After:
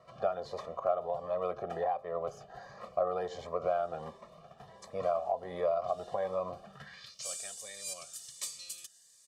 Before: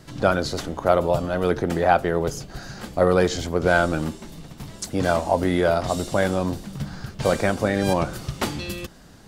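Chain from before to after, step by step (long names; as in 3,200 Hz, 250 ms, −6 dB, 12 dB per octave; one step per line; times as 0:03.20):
dynamic equaliser 1,700 Hz, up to −6 dB, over −42 dBFS, Q 3.3
band-pass filter sweep 870 Hz → 7,900 Hz, 0:06.69–0:07.27
downward compressor 4 to 1, threshold −30 dBFS, peak gain reduction 13 dB
comb filter 1.7 ms, depth 91%
phaser whose notches keep moving one way rising 1.4 Hz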